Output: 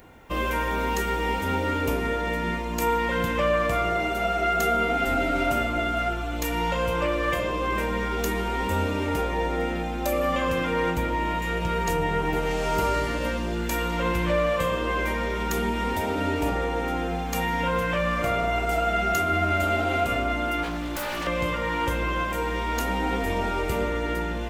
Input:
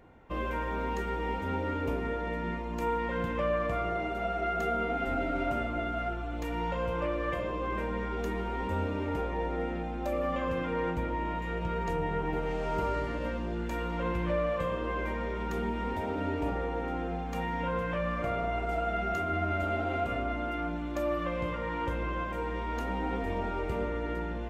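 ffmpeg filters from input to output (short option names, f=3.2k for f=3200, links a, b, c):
-filter_complex "[0:a]crystalizer=i=4.5:c=0,asettb=1/sr,asplit=3[a][b][c];[a]atrim=end=20.634[d];[b]atrim=start=20.63:end=21.27,asetpts=PTS-STARTPTS,afade=t=in:d=0.004:c=qsin,afade=t=out:st=0.636:d=0.004:c=qsin,aeval=exprs='0.0299*(abs(mod(val(0)/0.0299+3,4)-2)-1)':c=same[e];[c]atrim=start=21.266[f];[d][e]acrossfade=d=0.004:c1=hsin:c2=qsin[g];[g][f]acrossfade=d=0.004:c1=qsin:c2=hsin,volume=5.5dB"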